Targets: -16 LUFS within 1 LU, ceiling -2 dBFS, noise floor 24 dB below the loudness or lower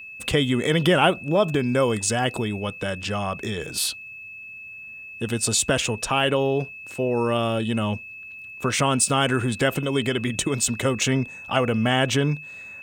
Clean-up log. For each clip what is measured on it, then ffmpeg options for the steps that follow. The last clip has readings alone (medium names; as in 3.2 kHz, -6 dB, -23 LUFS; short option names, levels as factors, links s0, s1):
steady tone 2.6 kHz; tone level -37 dBFS; loudness -23.0 LUFS; peak level -4.5 dBFS; loudness target -16.0 LUFS
-> -af "bandreject=f=2600:w=30"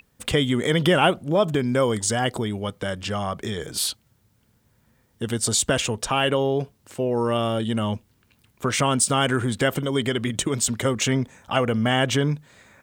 steady tone not found; loudness -23.0 LUFS; peak level -5.0 dBFS; loudness target -16.0 LUFS
-> -af "volume=2.24,alimiter=limit=0.794:level=0:latency=1"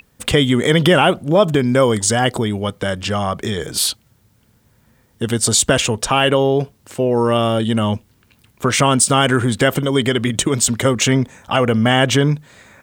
loudness -16.5 LUFS; peak level -2.0 dBFS; noise floor -57 dBFS